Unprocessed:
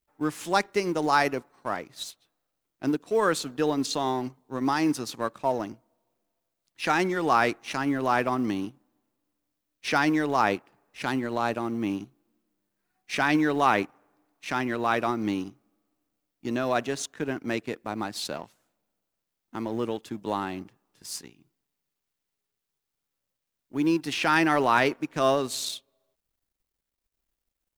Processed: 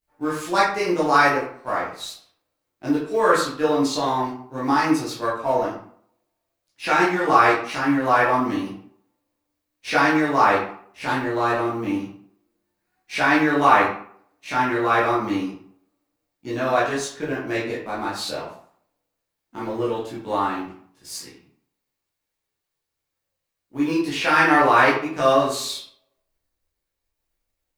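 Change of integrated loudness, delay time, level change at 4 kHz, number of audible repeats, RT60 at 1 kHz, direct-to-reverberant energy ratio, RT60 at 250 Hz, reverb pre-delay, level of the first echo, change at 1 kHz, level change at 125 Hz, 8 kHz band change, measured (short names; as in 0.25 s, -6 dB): +6.0 dB, none, +3.5 dB, none, 0.60 s, -9.0 dB, 0.55 s, 12 ms, none, +7.0 dB, +3.5 dB, +2.5 dB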